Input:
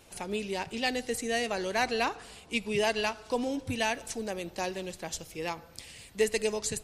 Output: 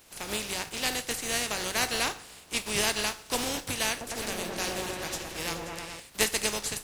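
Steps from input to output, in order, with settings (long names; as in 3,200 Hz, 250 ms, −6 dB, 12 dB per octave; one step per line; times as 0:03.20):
compressing power law on the bin magnitudes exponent 0.41
0:03.90–0:06.00: echo whose low-pass opens from repeat to repeat 106 ms, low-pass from 750 Hz, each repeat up 1 octave, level 0 dB
convolution reverb RT60 0.30 s, pre-delay 6 ms, DRR 11 dB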